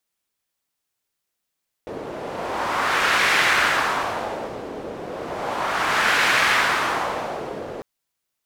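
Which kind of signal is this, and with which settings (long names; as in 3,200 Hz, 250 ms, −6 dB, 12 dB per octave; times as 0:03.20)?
wind from filtered noise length 5.95 s, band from 450 Hz, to 1,800 Hz, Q 1.5, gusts 2, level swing 15 dB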